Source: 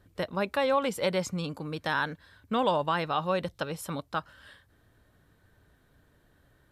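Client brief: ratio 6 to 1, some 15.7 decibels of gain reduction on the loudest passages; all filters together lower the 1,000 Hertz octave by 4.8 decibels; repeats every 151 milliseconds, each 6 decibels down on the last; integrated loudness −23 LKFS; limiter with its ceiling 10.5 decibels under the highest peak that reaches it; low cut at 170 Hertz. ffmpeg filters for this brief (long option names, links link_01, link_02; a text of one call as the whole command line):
ffmpeg -i in.wav -af "highpass=170,equalizer=frequency=1000:width_type=o:gain=-6,acompressor=threshold=-42dB:ratio=6,alimiter=level_in=12.5dB:limit=-24dB:level=0:latency=1,volume=-12.5dB,aecho=1:1:151|302|453|604|755|906:0.501|0.251|0.125|0.0626|0.0313|0.0157,volume=24dB" out.wav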